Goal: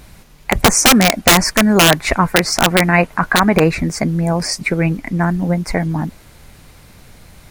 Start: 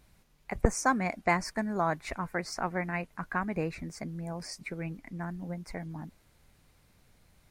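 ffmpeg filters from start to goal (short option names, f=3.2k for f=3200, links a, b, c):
-filter_complex "[0:a]aeval=exprs='(mod(11.2*val(0)+1,2)-1)/11.2':c=same,asettb=1/sr,asplit=3[a][b][c];[a]atrim=end=2.984[d];[b]atrim=start=2.98:end=3.64,asetpts=PTS-STARTPTS,afade=t=in:d=0.004:c=qsin,afade=t=out:st=0.656:d=0.004:c=qsin,equalizer=f=970:t=o:w=2.4:g=5.5[e];[c]atrim=start=3.636[f];[d][e]acrossfade=d=0.004:c1=hsin:c2=qsin[g];[g][f]acrossfade=d=0.004:c1=qsin:c2=hsin,alimiter=level_in=22dB:limit=-1dB:release=50:level=0:latency=1,volume=-1dB"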